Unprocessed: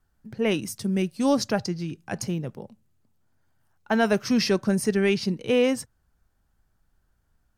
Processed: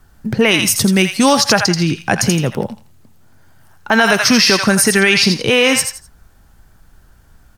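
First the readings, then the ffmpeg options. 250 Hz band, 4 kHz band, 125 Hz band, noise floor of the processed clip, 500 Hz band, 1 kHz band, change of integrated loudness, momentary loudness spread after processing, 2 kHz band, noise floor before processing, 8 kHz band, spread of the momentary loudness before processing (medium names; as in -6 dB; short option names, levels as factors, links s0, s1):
+9.0 dB, +18.5 dB, +11.5 dB, -49 dBFS, +8.0 dB, +14.0 dB, +12.0 dB, 8 LU, +18.0 dB, -70 dBFS, +19.5 dB, 11 LU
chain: -filter_complex "[0:a]acrossover=split=890[s0][s1];[s0]acompressor=threshold=0.0224:ratio=6[s2];[s1]aecho=1:1:83|166|249:0.447|0.116|0.0302[s3];[s2][s3]amix=inputs=2:normalize=0,alimiter=level_in=12.6:limit=0.891:release=50:level=0:latency=1,volume=0.891"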